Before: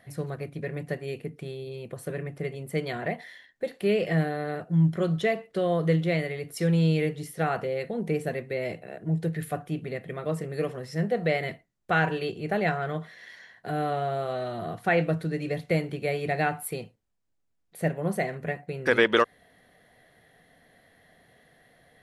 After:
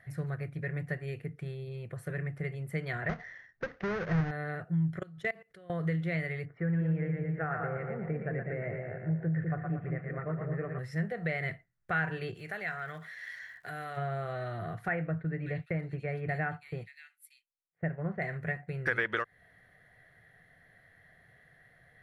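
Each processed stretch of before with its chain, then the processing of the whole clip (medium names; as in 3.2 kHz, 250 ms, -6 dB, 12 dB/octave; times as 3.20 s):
3.09–4.31 s: square wave that keeps the level + steep low-pass 6.5 kHz 96 dB/octave + treble shelf 2.3 kHz -11.5 dB
4.99–5.70 s: treble shelf 4.5 kHz +6 dB + level held to a coarse grid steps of 23 dB
6.45–10.79 s: low-pass 1.8 kHz 24 dB/octave + two-band feedback delay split 590 Hz, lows 201 ms, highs 116 ms, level -4 dB
12.34–13.96 s: tilt EQ +3 dB/octave + compression 2:1, threshold -36 dBFS + crackle 150 per s -45 dBFS
14.88–18.22 s: expander -35 dBFS + treble shelf 3.5 kHz -10 dB + bands offset in time lows, highs 580 ms, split 3.1 kHz
whole clip: resonant high shelf 1.8 kHz -10 dB, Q 1.5; compression 4:1, threshold -25 dBFS; ten-band graphic EQ 125 Hz +5 dB, 250 Hz -11 dB, 500 Hz -5 dB, 1 kHz -10 dB, 2 kHz +11 dB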